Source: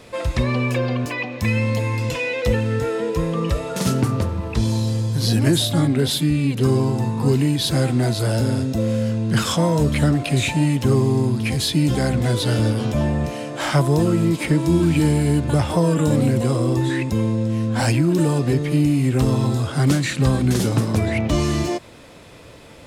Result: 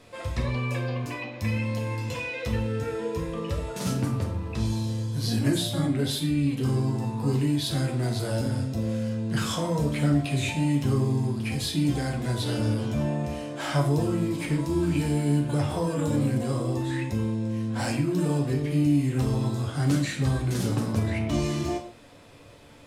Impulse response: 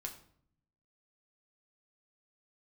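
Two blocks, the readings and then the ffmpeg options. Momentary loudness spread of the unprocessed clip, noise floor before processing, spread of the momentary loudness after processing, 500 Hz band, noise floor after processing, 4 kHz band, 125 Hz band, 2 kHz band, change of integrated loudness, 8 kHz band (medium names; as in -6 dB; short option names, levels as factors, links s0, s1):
5 LU, -42 dBFS, 6 LU, -8.5 dB, -41 dBFS, -8.0 dB, -7.0 dB, -8.0 dB, -7.0 dB, -8.0 dB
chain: -filter_complex "[1:a]atrim=start_sample=2205,afade=t=out:st=0.16:d=0.01,atrim=end_sample=7497,asetrate=32193,aresample=44100[s0];[0:a][s0]afir=irnorm=-1:irlink=0,volume=0.447"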